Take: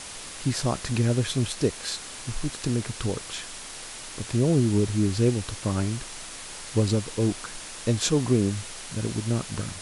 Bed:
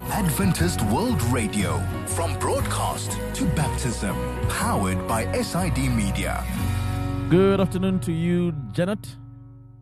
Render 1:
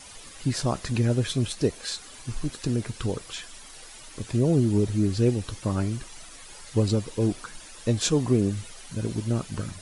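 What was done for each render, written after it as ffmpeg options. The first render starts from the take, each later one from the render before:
-af "afftdn=nr=11:nf=-40"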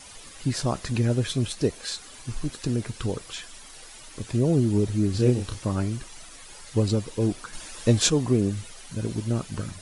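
-filter_complex "[0:a]asettb=1/sr,asplit=3[a][b][c];[a]atrim=end=5.114[d];[b]atrim=start=5.11:end=5.65,asetpts=PTS-STARTPTS,afade=t=in:d=0.004:c=qsin,afade=t=out:st=0.536:d=0.004:c=qsin,asplit=2[e][f];[f]adelay=32,volume=-5dB[g];[e][g]amix=inputs=2:normalize=0,atrim=end_sample=23814[h];[c]atrim=start=5.646[i];[d][h]acrossfade=d=0.004:c1=hsin:c2=qsin[j];[j][i]acrossfade=d=0.004:c1=qsin:c2=hsin,asplit=3[k][l][m];[k]atrim=end=7.532[n];[l]atrim=start=7.528:end=8.102,asetpts=PTS-STARTPTS,volume=4.5dB[o];[m]atrim=start=8.098[p];[n][o]acrossfade=d=0.004:c1=hsin:c2=hsin[q];[q][p]acrossfade=d=0.004:c1=hsin:c2=hsin"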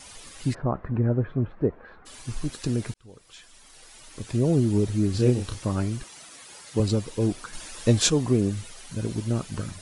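-filter_complex "[0:a]asplit=3[a][b][c];[a]afade=t=out:st=0.53:d=0.02[d];[b]lowpass=f=1.5k:w=0.5412,lowpass=f=1.5k:w=1.3066,afade=t=in:st=0.53:d=0.02,afade=t=out:st=2.05:d=0.02[e];[c]afade=t=in:st=2.05:d=0.02[f];[d][e][f]amix=inputs=3:normalize=0,asettb=1/sr,asplit=3[g][h][i];[g]atrim=end=6.034[j];[h]atrim=start=6.03:end=6.8,asetpts=PTS-STARTPTS,afade=t=in:d=0.004:c=qsin,afade=t=out:st=0.766:d=0.004:c=qsin,highpass=130[k];[i]atrim=start=6.796[l];[j][k]acrossfade=d=0.004:c1=hsin:c2=qsin[m];[m][l]acrossfade=d=0.004:c1=qsin:c2=hsin,asplit=2[n][o];[n]atrim=end=2.94,asetpts=PTS-STARTPTS,afade=t=out:st=2.936:d=0.004:c=hsin[p];[o]atrim=start=2.94,asetpts=PTS-STARTPTS,afade=t=in:d=1.53[q];[p][q]concat=n=2:v=0:a=1"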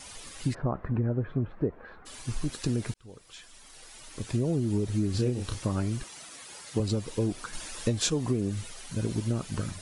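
-af "acompressor=threshold=-23dB:ratio=12"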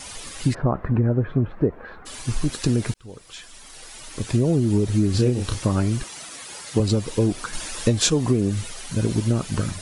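-af "volume=8dB"

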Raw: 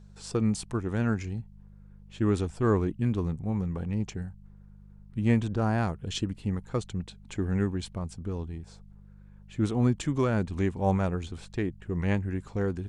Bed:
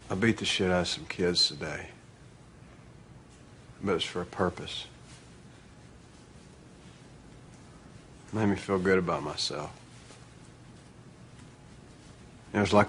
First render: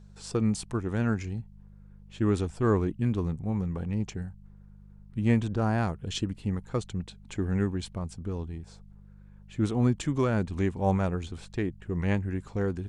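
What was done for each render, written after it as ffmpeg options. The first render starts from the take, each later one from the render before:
-af anull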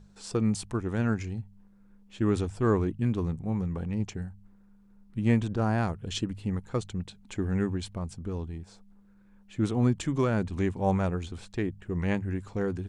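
-af "bandreject=f=50:t=h:w=4,bandreject=f=100:t=h:w=4,bandreject=f=150:t=h:w=4"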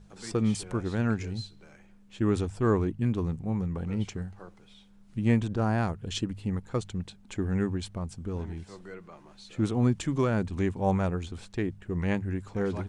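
-filter_complex "[1:a]volume=-19.5dB[a];[0:a][a]amix=inputs=2:normalize=0"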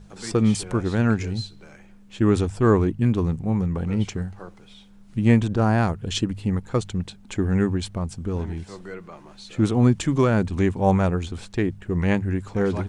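-af "volume=7dB"

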